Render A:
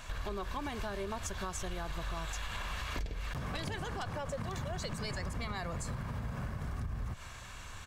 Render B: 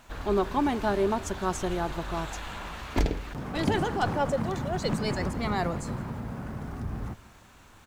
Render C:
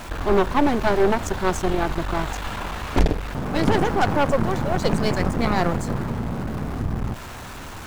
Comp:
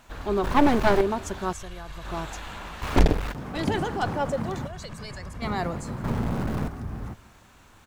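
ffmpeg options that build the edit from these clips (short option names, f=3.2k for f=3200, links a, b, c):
-filter_complex "[2:a]asplit=3[a][b][c];[0:a]asplit=2[d][e];[1:a]asplit=6[f][g][h][i][j][k];[f]atrim=end=0.442[l];[a]atrim=start=0.438:end=1.012[m];[g]atrim=start=1.008:end=1.532[n];[d]atrim=start=1.528:end=2.052[o];[h]atrim=start=2.048:end=2.822[p];[b]atrim=start=2.818:end=3.322[q];[i]atrim=start=3.318:end=4.672[r];[e]atrim=start=4.668:end=5.422[s];[j]atrim=start=5.418:end=6.042[t];[c]atrim=start=6.038:end=6.682[u];[k]atrim=start=6.678[v];[l][m]acrossfade=d=0.004:c1=hsin:c2=hsin[w];[w][n]acrossfade=d=0.004:c1=hsin:c2=hsin[x];[x][o]acrossfade=d=0.004:c1=hsin:c2=hsin[y];[y][p]acrossfade=d=0.004:c1=hsin:c2=hsin[z];[z][q]acrossfade=d=0.004:c1=hsin:c2=hsin[aa];[aa][r]acrossfade=d=0.004:c1=hsin:c2=hsin[ab];[ab][s]acrossfade=d=0.004:c1=hsin:c2=hsin[ac];[ac][t]acrossfade=d=0.004:c1=hsin:c2=hsin[ad];[ad][u]acrossfade=d=0.004:c1=hsin:c2=hsin[ae];[ae][v]acrossfade=d=0.004:c1=hsin:c2=hsin"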